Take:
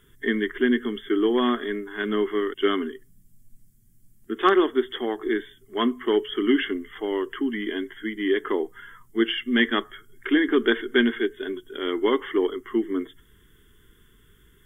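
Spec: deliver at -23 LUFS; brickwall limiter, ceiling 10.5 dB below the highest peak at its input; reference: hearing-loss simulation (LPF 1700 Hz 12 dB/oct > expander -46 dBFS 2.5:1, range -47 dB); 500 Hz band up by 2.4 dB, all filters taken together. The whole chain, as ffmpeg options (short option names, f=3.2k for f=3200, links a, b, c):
-af "equalizer=f=500:t=o:g=3.5,alimiter=limit=-15.5dB:level=0:latency=1,lowpass=1.7k,agate=range=-47dB:threshold=-46dB:ratio=2.5,volume=4dB"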